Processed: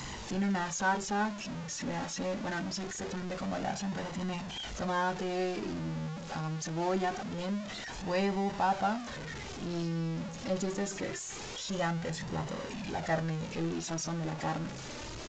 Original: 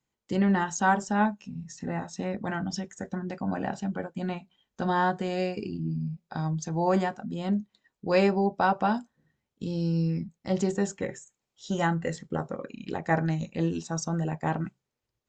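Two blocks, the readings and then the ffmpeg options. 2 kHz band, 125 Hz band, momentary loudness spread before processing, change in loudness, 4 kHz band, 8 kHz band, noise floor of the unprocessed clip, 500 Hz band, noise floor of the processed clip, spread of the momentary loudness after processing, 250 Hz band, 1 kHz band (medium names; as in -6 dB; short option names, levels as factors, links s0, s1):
-3.5 dB, -6.0 dB, 11 LU, -5.5 dB, +2.5 dB, +1.0 dB, -85 dBFS, -5.5 dB, -42 dBFS, 8 LU, -6.0 dB, -5.0 dB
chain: -af "aeval=exprs='val(0)+0.5*0.0501*sgn(val(0))':c=same,flanger=delay=1:depth=2.6:regen=47:speed=0.24:shape=sinusoidal,aresample=16000,aresample=44100,volume=0.631"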